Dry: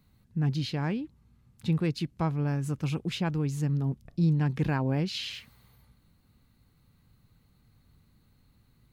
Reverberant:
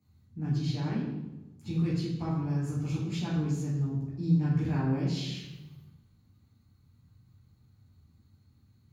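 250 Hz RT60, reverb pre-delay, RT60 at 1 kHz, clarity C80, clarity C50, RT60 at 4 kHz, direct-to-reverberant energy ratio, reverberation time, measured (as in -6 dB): 1.4 s, 3 ms, 0.95 s, 4.5 dB, 1.0 dB, 0.75 s, -8.0 dB, 1.1 s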